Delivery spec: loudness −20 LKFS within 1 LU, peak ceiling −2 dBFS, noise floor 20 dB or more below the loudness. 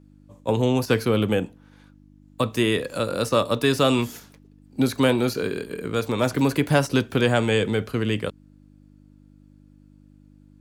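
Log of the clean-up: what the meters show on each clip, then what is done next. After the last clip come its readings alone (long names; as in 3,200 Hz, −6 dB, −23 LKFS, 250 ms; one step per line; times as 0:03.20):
mains hum 50 Hz; hum harmonics up to 300 Hz; level of the hum −47 dBFS; integrated loudness −23.0 LKFS; sample peak −6.5 dBFS; target loudness −20.0 LKFS
→ hum removal 50 Hz, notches 6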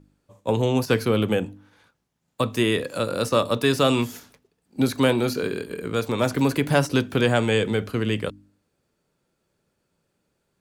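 mains hum none found; integrated loudness −23.0 LKFS; sample peak −6.5 dBFS; target loudness −20.0 LKFS
→ level +3 dB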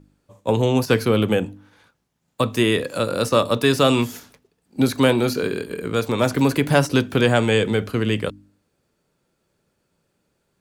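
integrated loudness −20.0 LKFS; sample peak −3.5 dBFS; background noise floor −72 dBFS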